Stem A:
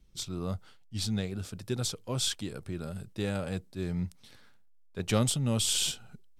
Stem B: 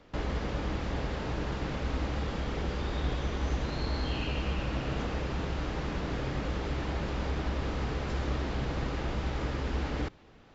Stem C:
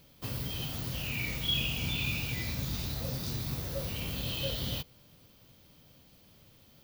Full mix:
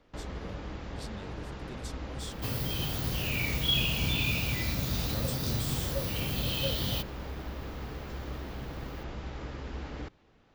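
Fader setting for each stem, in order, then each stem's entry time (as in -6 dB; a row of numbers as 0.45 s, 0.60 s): -13.5 dB, -7.0 dB, +3.0 dB; 0.00 s, 0.00 s, 2.20 s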